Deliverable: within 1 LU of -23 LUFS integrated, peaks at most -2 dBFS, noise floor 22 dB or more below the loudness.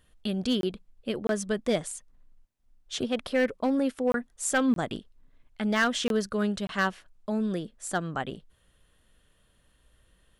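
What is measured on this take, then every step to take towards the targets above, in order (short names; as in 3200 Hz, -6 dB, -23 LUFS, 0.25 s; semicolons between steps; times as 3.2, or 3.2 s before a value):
clipped 0.3%; flat tops at -17.5 dBFS; dropouts 6; longest dropout 22 ms; loudness -29.0 LUFS; peak -17.5 dBFS; loudness target -23.0 LUFS
-> clip repair -17.5 dBFS; interpolate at 0.61/1.27/4.12/4.74/6.08/6.67, 22 ms; gain +6 dB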